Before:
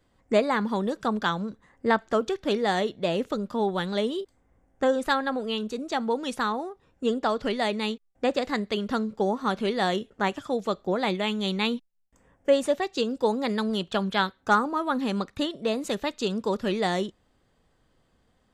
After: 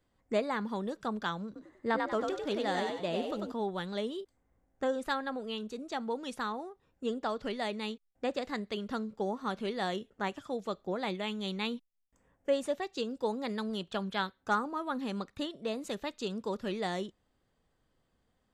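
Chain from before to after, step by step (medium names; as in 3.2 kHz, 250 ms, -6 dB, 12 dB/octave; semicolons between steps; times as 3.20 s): 1.46–3.52 s: frequency-shifting echo 95 ms, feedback 37%, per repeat +53 Hz, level -3.5 dB; trim -8.5 dB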